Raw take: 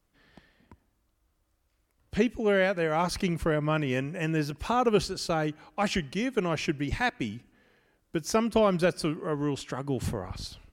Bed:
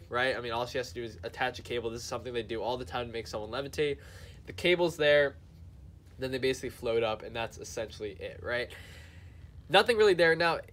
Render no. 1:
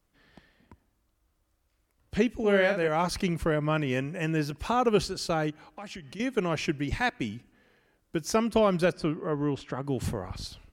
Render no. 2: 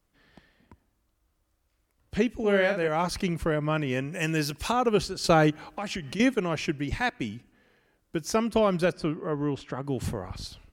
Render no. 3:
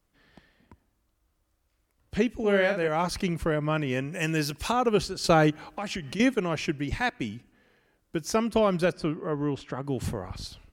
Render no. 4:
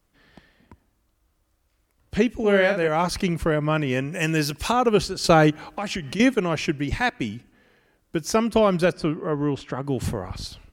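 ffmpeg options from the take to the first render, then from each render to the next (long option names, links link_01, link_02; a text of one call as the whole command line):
ffmpeg -i in.wav -filter_complex "[0:a]asettb=1/sr,asplit=3[link_01][link_02][link_03];[link_01]atrim=end=2.354[link_04];[link_02]atrim=start=2.35:end=2.88,asetpts=PTS-STARTPTS,afade=type=in:duration=0.004:curve=qsin,afade=type=out:start_time=0.526:duration=0.004:curve=qsin,asplit=2[link_05][link_06];[link_06]adelay=45,volume=-6dB[link_07];[link_05][link_07]amix=inputs=2:normalize=0,atrim=end_sample=23373[link_08];[link_03]atrim=start=2.876[link_09];[link_04][link_08]acrossfade=duration=0.004:curve1=hsin:curve2=qsin[link_10];[link_10][link_09]acrossfade=duration=0.004:curve1=qsin:curve2=hsin,asettb=1/sr,asplit=3[link_11][link_12][link_13];[link_11]atrim=end=5.504[link_14];[link_12]atrim=start=5.5:end=6.2,asetpts=PTS-STARTPTS,afade=type=in:duration=0.004:curve=qsin,afade=type=out:start_time=0.696:duration=0.004:curve=qsin,acompressor=threshold=-40dB:ratio=4:attack=3.2:release=140:knee=1:detection=peak[link_15];[link_13]atrim=start=6.196[link_16];[link_14][link_15]acrossfade=duration=0.004:curve1=hsin:curve2=qsin[link_17];[link_17][link_16]acrossfade=duration=0.004:curve1=qsin:curve2=hsin,asettb=1/sr,asplit=3[link_18][link_19][link_20];[link_18]atrim=end=8.924[link_21];[link_19]atrim=start=8.92:end=9.84,asetpts=PTS-STARTPTS,afade=type=in:duration=0.004:curve=qsin,afade=type=out:start_time=0.916:duration=0.004:curve=qsin,aemphasis=mode=reproduction:type=75fm[link_22];[link_20]atrim=start=9.836[link_23];[link_21][link_22]acrossfade=duration=0.004:curve1=hsin:curve2=qsin[link_24];[link_24][link_23]acrossfade=duration=0.004:curve1=qsin:curve2=hsin" out.wav
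ffmpeg -i in.wav -filter_complex "[0:a]asettb=1/sr,asplit=3[link_01][link_02][link_03];[link_01]atrim=end=4.124[link_04];[link_02]atrim=start=4.12:end=4.72,asetpts=PTS-STARTPTS,afade=type=in:duration=0.004:curve=qsin,afade=type=out:start_time=0.596:duration=0.004:curve=qsin,highshelf=frequency=2600:gain=11.5[link_05];[link_03]atrim=start=4.716[link_06];[link_04][link_05]acrossfade=duration=0.004:curve1=hsin:curve2=qsin[link_07];[link_07][link_06]acrossfade=duration=0.004:curve1=qsin:curve2=hsin,asplit=3[link_08][link_09][link_10];[link_08]atrim=end=5.242[link_11];[link_09]atrim=start=5.238:end=6.342,asetpts=PTS-STARTPTS,volume=8dB[link_12];[link_10]atrim=start=6.338[link_13];[link_11][link_12]acrossfade=duration=0.004:curve1=hsin:curve2=hsin[link_14];[link_14][link_13]acrossfade=duration=0.004:curve1=hsin:curve2=hsin" out.wav
ffmpeg -i in.wav -af anull out.wav
ffmpeg -i in.wav -af "volume=4.5dB" out.wav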